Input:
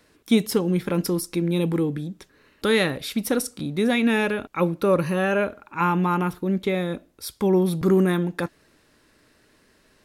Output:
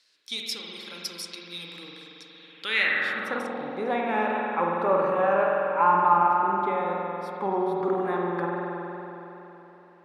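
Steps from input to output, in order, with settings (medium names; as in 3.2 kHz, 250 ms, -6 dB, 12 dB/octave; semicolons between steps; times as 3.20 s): spring tank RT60 3.4 s, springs 46 ms, chirp 45 ms, DRR -2 dB; wow and flutter 21 cents; in parallel at -10 dB: saturation -15 dBFS, distortion -14 dB; on the sum: band-pass sweep 4.5 kHz -> 880 Hz, 2.28–3.56 s; trim +2 dB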